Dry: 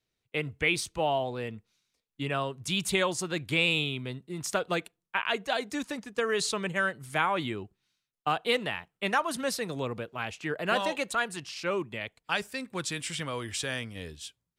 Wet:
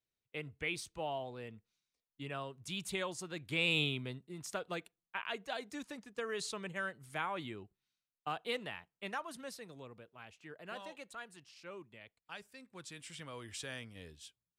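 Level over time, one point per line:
0:03.42 −11.5 dB
0:03.84 −2.5 dB
0:04.43 −11 dB
0:08.77 −11 dB
0:09.90 −18.5 dB
0:12.56 −18.5 dB
0:13.56 −11 dB

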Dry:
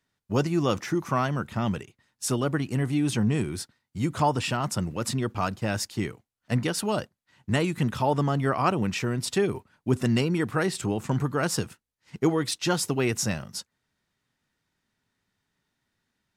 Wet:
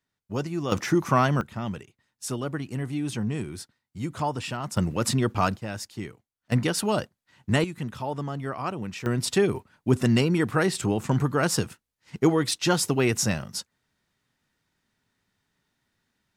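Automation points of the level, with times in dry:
−5 dB
from 0:00.72 +4.5 dB
from 0:01.41 −4.5 dB
from 0:04.77 +4 dB
from 0:05.57 −6 dB
from 0:06.52 +2 dB
from 0:07.64 −7 dB
from 0:09.06 +2.5 dB

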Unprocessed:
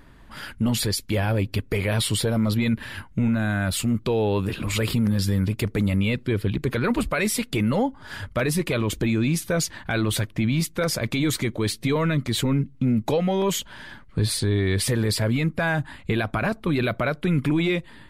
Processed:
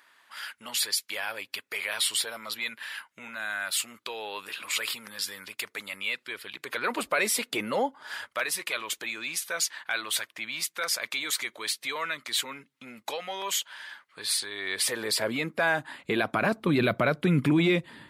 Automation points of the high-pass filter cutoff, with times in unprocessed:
0:06.55 1,200 Hz
0:07.05 480 Hz
0:07.82 480 Hz
0:08.50 1,100 Hz
0:14.51 1,100 Hz
0:15.32 390 Hz
0:15.87 390 Hz
0:16.84 140 Hz

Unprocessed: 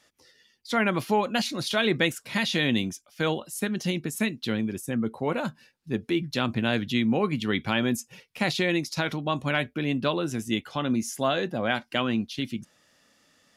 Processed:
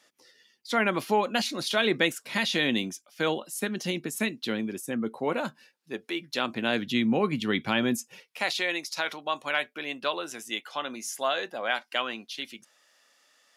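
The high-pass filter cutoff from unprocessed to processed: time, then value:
0:05.39 230 Hz
0:06.11 550 Hz
0:07.04 150 Hz
0:07.90 150 Hz
0:08.48 610 Hz

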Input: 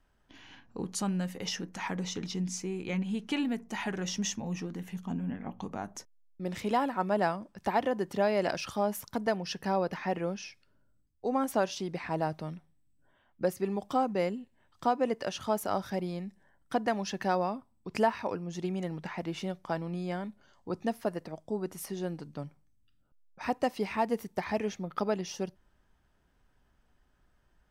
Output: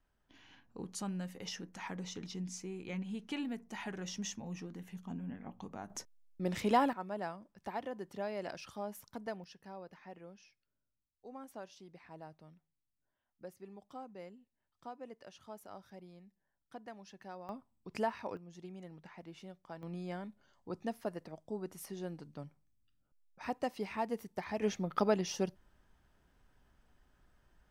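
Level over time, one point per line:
−8 dB
from 0:05.90 0 dB
from 0:06.93 −12 dB
from 0:09.44 −19.5 dB
from 0:17.49 −8 dB
from 0:18.37 −15 dB
from 0:19.83 −7 dB
from 0:24.62 +0.5 dB

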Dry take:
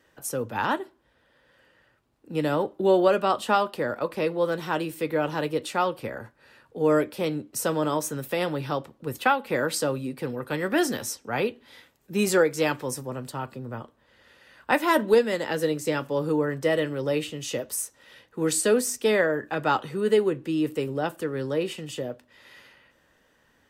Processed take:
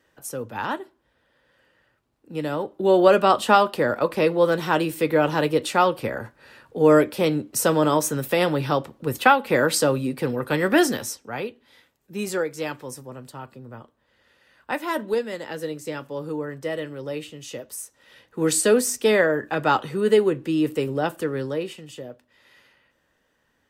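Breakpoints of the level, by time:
0:02.67 −2 dB
0:03.13 +6 dB
0:10.75 +6 dB
0:11.48 −5 dB
0:17.81 −5 dB
0:18.45 +3.5 dB
0:21.32 +3.5 dB
0:21.82 −5 dB

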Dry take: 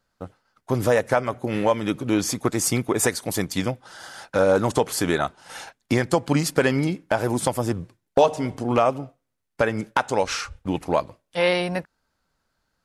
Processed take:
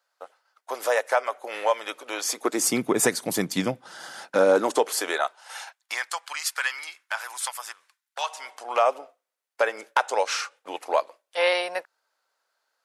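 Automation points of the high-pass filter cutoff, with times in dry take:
high-pass filter 24 dB per octave
0:02.20 560 Hz
0:02.87 150 Hz
0:04.08 150 Hz
0:05.14 490 Hz
0:06.23 1,100 Hz
0:08.23 1,100 Hz
0:08.91 490 Hz

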